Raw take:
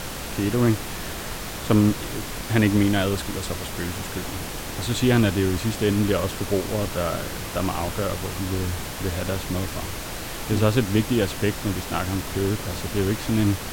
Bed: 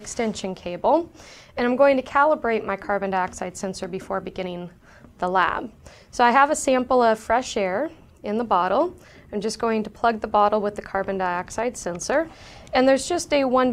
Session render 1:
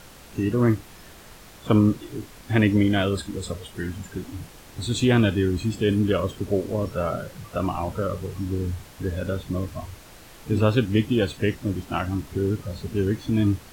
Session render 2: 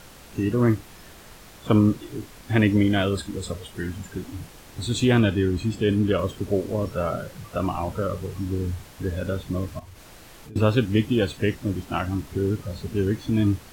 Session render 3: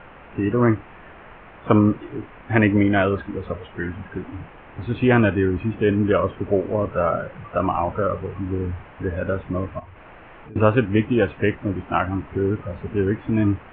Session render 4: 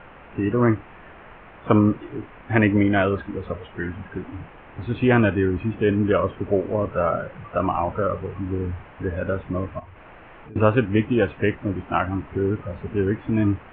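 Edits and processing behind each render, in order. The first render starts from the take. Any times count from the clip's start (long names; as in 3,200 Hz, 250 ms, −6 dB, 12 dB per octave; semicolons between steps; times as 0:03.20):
noise reduction from a noise print 14 dB
0:05.19–0:06.19: high-shelf EQ 6,100 Hz −4.5 dB; 0:09.79–0:10.56: downward compressor, threshold −40 dBFS
Butterworth low-pass 2,800 Hz 48 dB per octave; parametric band 1,000 Hz +7.5 dB 2.6 octaves
level −1 dB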